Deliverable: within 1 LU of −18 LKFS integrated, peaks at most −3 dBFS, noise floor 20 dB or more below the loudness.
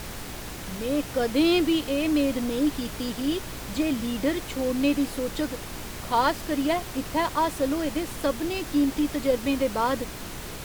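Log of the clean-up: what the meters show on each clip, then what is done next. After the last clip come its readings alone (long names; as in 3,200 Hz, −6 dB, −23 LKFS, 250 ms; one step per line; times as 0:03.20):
mains hum 60 Hz; hum harmonics up to 420 Hz; level of the hum −43 dBFS; background noise floor −37 dBFS; target noise floor −47 dBFS; integrated loudness −26.5 LKFS; sample peak −10.5 dBFS; target loudness −18.0 LKFS
→ hum removal 60 Hz, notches 7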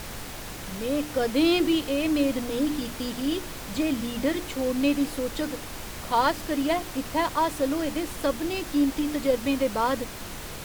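mains hum none found; background noise floor −38 dBFS; target noise floor −47 dBFS
→ noise reduction from a noise print 9 dB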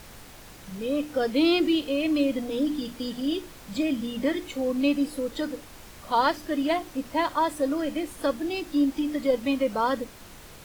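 background noise floor −47 dBFS; integrated loudness −27.0 LKFS; sample peak −10.5 dBFS; target loudness −18.0 LKFS
→ level +9 dB
brickwall limiter −3 dBFS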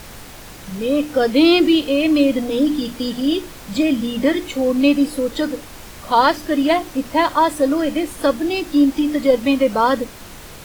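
integrated loudness −18.0 LKFS; sample peak −3.0 dBFS; background noise floor −38 dBFS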